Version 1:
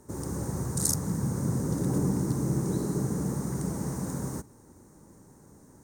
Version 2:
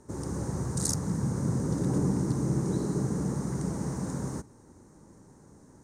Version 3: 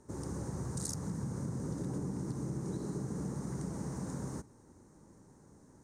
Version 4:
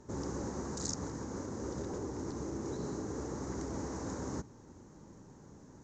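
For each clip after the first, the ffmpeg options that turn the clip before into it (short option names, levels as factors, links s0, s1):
-af "lowpass=7900"
-af "acompressor=threshold=0.0355:ratio=6,volume=0.562"
-af "afftfilt=real='re*lt(hypot(re,im),0.0794)':imag='im*lt(hypot(re,im),0.0794)':win_size=1024:overlap=0.75,volume=1.68" -ar 16000 -c:a pcm_mulaw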